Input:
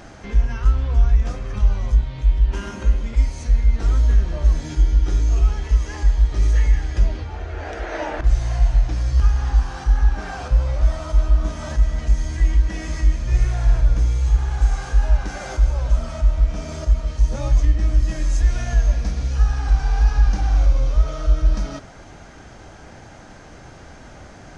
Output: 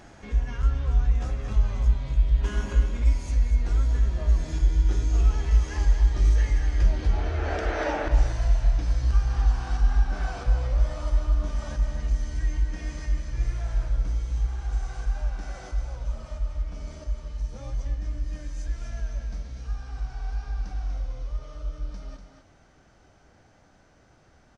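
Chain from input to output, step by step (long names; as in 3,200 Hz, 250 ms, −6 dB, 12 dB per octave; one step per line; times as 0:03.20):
source passing by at 0:05.67, 13 m/s, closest 15 metres
single-tap delay 243 ms −7.5 dB
speech leveller within 5 dB 0.5 s
level +1.5 dB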